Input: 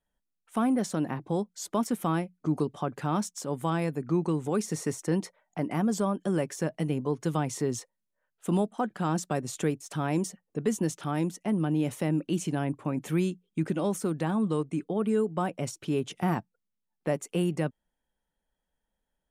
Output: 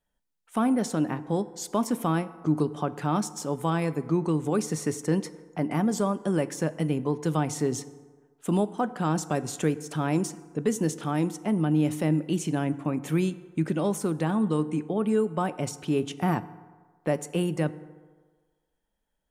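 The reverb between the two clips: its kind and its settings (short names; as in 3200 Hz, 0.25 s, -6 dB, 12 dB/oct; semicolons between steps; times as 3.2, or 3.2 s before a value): FDN reverb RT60 1.5 s, low-frequency decay 0.8×, high-frequency decay 0.5×, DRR 14 dB; gain +2 dB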